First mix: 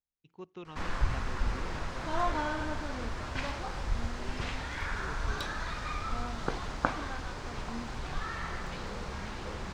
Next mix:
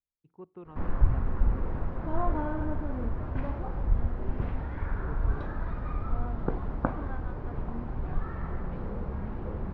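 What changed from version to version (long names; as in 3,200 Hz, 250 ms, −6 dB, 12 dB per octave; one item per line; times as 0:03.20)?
first voice: add high-shelf EQ 2,400 Hz −11 dB
background: add tilt shelving filter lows +7 dB, about 690 Hz
master: add low-pass filter 1,500 Hz 12 dB per octave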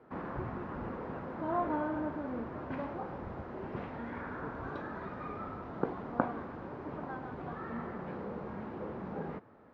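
background: entry −0.65 s
master: add high-pass filter 210 Hz 12 dB per octave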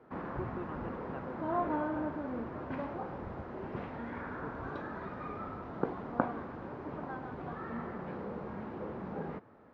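first voice +4.0 dB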